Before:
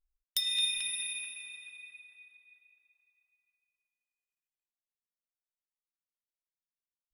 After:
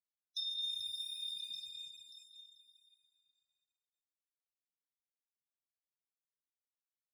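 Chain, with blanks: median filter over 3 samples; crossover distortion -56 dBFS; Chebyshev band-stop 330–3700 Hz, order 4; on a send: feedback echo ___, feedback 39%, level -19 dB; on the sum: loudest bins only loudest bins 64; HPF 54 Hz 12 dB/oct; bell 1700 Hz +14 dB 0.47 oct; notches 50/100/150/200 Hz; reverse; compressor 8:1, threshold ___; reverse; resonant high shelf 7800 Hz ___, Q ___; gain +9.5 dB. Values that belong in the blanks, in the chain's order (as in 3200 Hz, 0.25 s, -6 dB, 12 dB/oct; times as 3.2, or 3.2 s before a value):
0.585 s, -49 dBFS, -13 dB, 1.5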